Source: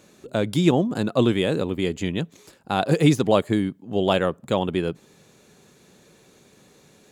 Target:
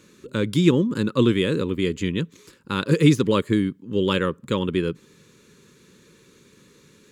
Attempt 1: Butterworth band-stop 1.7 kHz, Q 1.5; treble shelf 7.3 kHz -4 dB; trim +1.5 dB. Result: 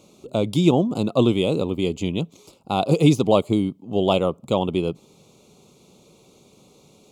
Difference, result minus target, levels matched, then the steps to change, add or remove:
2 kHz band -6.5 dB
change: Butterworth band-stop 710 Hz, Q 1.5

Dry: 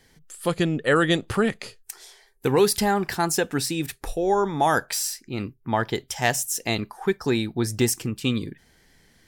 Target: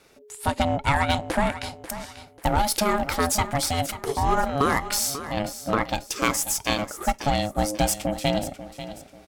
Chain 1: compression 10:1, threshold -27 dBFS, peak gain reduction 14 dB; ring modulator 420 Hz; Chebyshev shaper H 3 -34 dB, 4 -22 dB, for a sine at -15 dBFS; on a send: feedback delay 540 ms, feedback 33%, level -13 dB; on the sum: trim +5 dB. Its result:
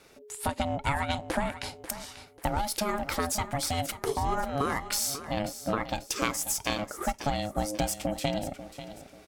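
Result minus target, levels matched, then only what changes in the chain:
compression: peak gain reduction +7.5 dB
change: compression 10:1, threshold -18.5 dBFS, peak gain reduction 6 dB

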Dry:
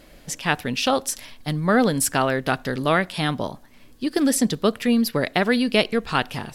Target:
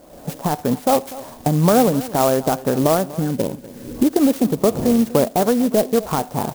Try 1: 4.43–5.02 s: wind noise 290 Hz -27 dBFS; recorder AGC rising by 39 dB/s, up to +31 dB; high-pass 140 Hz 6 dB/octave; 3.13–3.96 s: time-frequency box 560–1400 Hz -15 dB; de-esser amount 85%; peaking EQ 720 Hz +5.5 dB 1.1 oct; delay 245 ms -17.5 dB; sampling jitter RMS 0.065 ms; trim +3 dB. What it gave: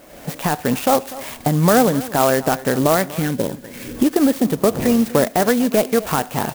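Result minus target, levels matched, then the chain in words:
2 kHz band +7.0 dB
4.43–5.02 s: wind noise 290 Hz -27 dBFS; recorder AGC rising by 39 dB/s, up to +31 dB; high-pass 140 Hz 6 dB/octave; 3.13–3.96 s: time-frequency box 560–1400 Hz -15 dB; de-esser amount 85%; Butterworth band-stop 2.7 kHz, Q 0.55; peaking EQ 720 Hz +5.5 dB 1.1 oct; delay 245 ms -17.5 dB; sampling jitter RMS 0.065 ms; trim +3 dB

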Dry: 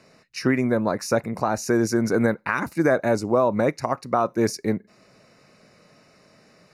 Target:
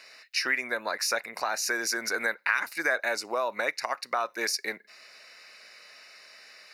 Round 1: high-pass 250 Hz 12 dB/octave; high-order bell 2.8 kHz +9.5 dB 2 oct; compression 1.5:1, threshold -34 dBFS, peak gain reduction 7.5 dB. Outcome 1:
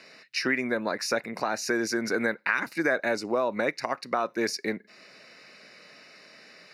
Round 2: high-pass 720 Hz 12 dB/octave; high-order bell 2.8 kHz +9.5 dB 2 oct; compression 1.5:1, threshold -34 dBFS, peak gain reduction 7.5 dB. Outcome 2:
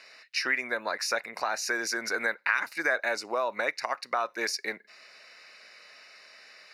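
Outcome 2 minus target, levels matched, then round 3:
8 kHz band -3.0 dB
high-pass 720 Hz 12 dB/octave; high-order bell 2.8 kHz +9.5 dB 2 oct; compression 1.5:1, threshold -34 dBFS, peak gain reduction 7.5 dB; treble shelf 9.3 kHz +12 dB

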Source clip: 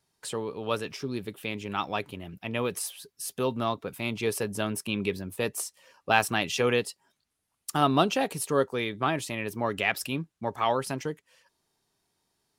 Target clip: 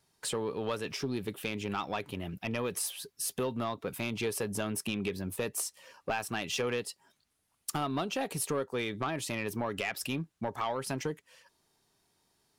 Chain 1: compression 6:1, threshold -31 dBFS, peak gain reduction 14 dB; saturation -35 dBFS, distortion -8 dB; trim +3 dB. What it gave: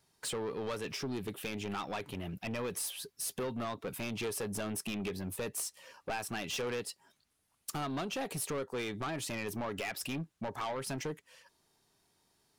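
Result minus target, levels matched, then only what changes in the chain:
saturation: distortion +8 dB
change: saturation -26 dBFS, distortion -16 dB

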